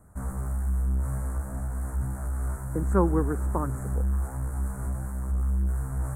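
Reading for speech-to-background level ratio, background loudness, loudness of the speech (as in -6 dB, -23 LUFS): 1.0 dB, -30.5 LUFS, -29.5 LUFS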